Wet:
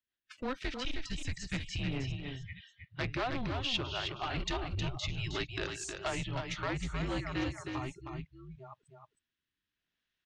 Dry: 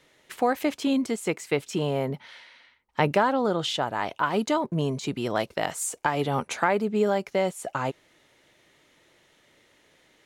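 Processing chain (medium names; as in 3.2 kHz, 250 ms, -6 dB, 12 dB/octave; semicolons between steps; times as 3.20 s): chunks repeated in reverse 634 ms, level -12 dB; spectral noise reduction 23 dB; level rider gain up to 7 dB; rotary cabinet horn 5.5 Hz, later 0.65 Hz, at 5.51 s; frequency shift -260 Hz; hard clipper -18.5 dBFS, distortion -10 dB; four-pole ladder low-pass 5.7 kHz, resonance 25%; treble shelf 2.1 kHz +8 dB; delay 314 ms -6 dB; trim -7 dB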